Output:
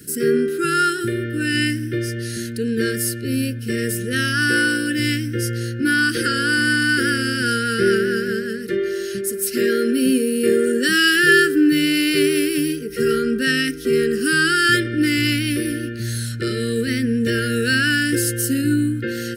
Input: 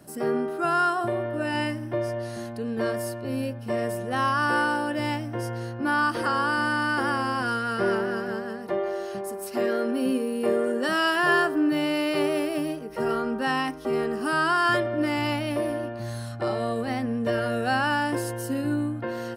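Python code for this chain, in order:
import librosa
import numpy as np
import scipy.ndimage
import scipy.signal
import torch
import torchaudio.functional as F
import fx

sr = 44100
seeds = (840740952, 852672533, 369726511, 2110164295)

y = scipy.signal.sosfilt(scipy.signal.ellip(3, 1.0, 40, [460.0, 1500.0], 'bandstop', fs=sr, output='sos'), x)
y = fx.high_shelf(y, sr, hz=4200.0, db=8.5)
y = F.gain(torch.from_numpy(y), 9.0).numpy()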